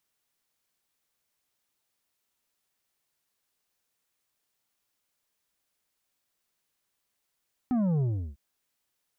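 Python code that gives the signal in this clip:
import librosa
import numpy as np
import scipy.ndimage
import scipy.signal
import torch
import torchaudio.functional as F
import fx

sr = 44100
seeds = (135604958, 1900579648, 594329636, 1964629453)

y = fx.sub_drop(sr, level_db=-24, start_hz=260.0, length_s=0.65, drive_db=7.5, fade_s=0.35, end_hz=65.0)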